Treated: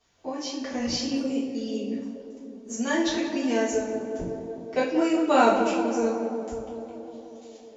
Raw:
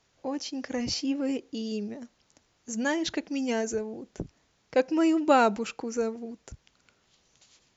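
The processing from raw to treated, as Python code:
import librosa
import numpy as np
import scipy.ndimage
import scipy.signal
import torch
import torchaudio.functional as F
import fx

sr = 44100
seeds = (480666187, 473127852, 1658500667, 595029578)

y = fx.echo_tape(x, sr, ms=184, feedback_pct=86, wet_db=-6.0, lp_hz=1500.0, drive_db=14.0, wow_cents=26)
y = fx.env_flanger(y, sr, rest_ms=11.7, full_db=-26.0, at=(1.16, 2.7))
y = fx.rev_double_slope(y, sr, seeds[0], early_s=0.47, late_s=1.8, knee_db=-18, drr_db=-9.0)
y = F.gain(torch.from_numpy(y), -7.0).numpy()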